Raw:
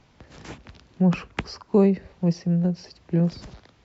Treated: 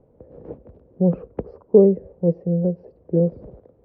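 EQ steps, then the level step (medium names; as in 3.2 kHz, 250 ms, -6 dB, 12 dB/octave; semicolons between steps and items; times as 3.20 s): resonant low-pass 500 Hz, resonance Q 4.9; -1.0 dB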